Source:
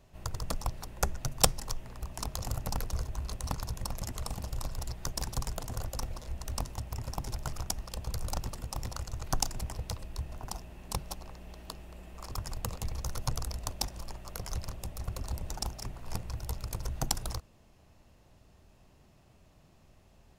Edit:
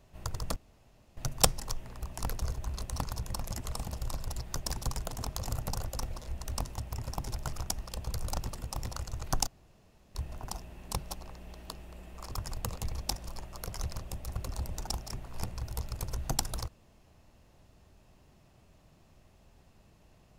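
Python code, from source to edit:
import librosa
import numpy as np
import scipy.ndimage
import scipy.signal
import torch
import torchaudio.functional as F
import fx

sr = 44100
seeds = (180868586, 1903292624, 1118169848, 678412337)

y = fx.edit(x, sr, fx.room_tone_fill(start_s=0.56, length_s=0.61),
    fx.move(start_s=2.23, length_s=0.51, to_s=5.75),
    fx.room_tone_fill(start_s=9.47, length_s=0.68),
    fx.cut(start_s=13.02, length_s=0.72), tone=tone)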